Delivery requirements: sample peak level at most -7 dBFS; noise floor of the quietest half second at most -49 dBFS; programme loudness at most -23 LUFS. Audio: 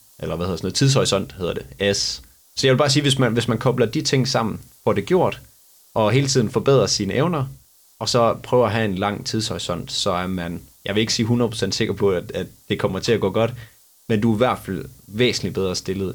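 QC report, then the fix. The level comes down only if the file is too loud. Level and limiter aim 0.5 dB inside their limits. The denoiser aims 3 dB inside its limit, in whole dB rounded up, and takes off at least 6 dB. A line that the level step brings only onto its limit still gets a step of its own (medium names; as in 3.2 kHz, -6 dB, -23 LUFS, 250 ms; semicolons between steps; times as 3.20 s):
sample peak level -6.0 dBFS: fail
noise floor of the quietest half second -52 dBFS: pass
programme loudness -20.5 LUFS: fail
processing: trim -3 dB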